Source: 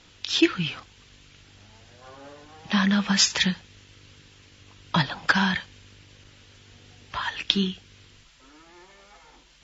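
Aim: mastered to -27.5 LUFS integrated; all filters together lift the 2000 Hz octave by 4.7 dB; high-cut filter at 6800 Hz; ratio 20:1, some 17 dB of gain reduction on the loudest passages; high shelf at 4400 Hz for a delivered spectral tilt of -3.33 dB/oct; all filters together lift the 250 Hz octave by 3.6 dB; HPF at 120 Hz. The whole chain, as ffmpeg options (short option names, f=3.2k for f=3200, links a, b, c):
-af "highpass=120,lowpass=6.8k,equalizer=f=250:t=o:g=6,equalizer=f=2k:t=o:g=5.5,highshelf=f=4.4k:g=3.5,acompressor=threshold=-27dB:ratio=20,volume=5.5dB"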